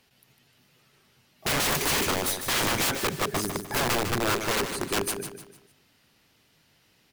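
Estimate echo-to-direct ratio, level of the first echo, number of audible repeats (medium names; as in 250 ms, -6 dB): -7.5 dB, -8.0 dB, 4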